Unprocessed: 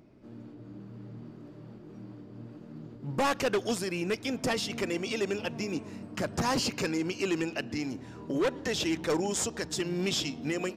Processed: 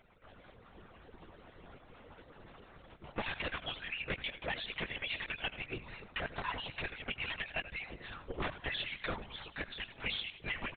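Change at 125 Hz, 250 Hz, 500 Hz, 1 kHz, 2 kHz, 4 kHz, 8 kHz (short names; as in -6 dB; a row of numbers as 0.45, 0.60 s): -10.0 dB, -17.5 dB, -15.0 dB, -8.5 dB, -1.5 dB, -4.5 dB, under -40 dB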